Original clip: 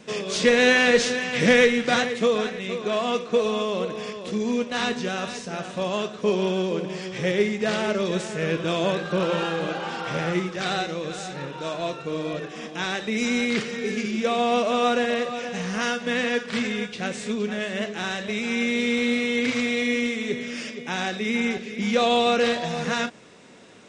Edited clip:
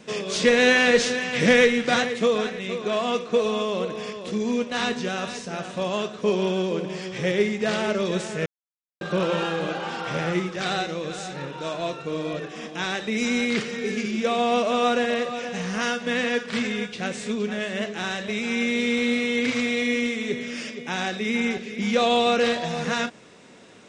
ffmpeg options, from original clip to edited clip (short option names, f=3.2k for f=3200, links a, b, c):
-filter_complex "[0:a]asplit=3[a][b][c];[a]atrim=end=8.46,asetpts=PTS-STARTPTS,afade=t=out:st=8.456:d=0.004:c=hsin[d];[b]atrim=start=8.46:end=9.01,asetpts=PTS-STARTPTS,volume=0[e];[c]atrim=start=9.01,asetpts=PTS-STARTPTS,afade=t=in:d=0.004:c=hsin[f];[d][e][f]concat=n=3:v=0:a=1"